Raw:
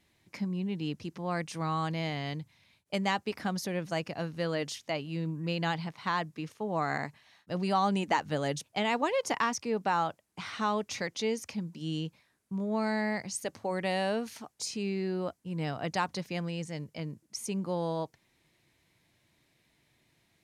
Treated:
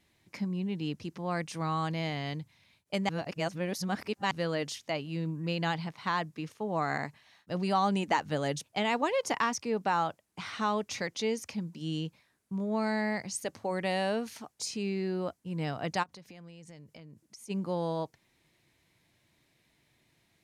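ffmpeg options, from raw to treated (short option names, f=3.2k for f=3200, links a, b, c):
-filter_complex "[0:a]asplit=3[a][b][c];[a]afade=t=out:st=16.02:d=0.02[d];[b]acompressor=threshold=-46dB:ratio=12:attack=3.2:release=140:knee=1:detection=peak,afade=t=in:st=16.02:d=0.02,afade=t=out:st=17.49:d=0.02[e];[c]afade=t=in:st=17.49:d=0.02[f];[d][e][f]amix=inputs=3:normalize=0,asplit=3[g][h][i];[g]atrim=end=3.092[j];[h]atrim=start=3.088:end=4.312,asetpts=PTS-STARTPTS,areverse[k];[i]atrim=start=4.308[l];[j][k]acrossfade=d=0.004:c1=hsin:c2=hsin[m];[m][l]acrossfade=d=0.004:c1=hsin:c2=hsin"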